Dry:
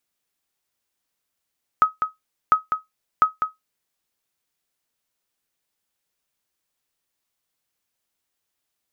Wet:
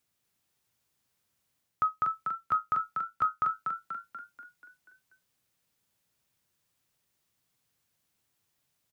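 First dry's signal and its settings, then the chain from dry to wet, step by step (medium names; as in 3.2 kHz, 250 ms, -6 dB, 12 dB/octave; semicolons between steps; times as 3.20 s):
sonar ping 1.27 kHz, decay 0.16 s, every 0.70 s, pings 3, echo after 0.20 s, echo -7 dB -6.5 dBFS
peaking EQ 110 Hz +12 dB 1.3 oct; reverse; compression 6:1, threshold -26 dBFS; reverse; frequency-shifting echo 242 ms, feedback 54%, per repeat +36 Hz, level -4.5 dB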